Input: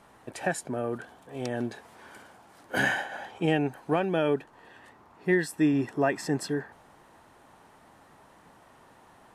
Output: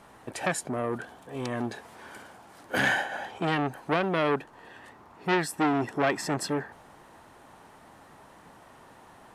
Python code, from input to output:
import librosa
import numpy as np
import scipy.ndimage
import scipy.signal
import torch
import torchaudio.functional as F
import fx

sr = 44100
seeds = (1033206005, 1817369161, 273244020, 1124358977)

y = fx.transformer_sat(x, sr, knee_hz=1400.0)
y = F.gain(torch.from_numpy(y), 3.5).numpy()